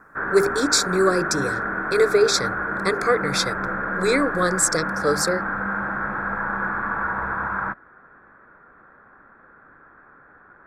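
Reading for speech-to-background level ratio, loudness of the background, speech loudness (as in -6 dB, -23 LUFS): 3.5 dB, -25.5 LUFS, -22.0 LUFS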